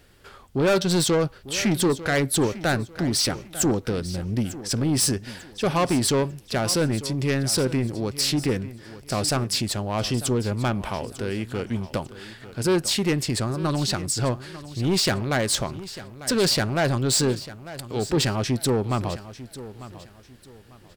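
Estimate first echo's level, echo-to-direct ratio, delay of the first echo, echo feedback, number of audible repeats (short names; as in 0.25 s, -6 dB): -15.5 dB, -15.0 dB, 0.897 s, 30%, 2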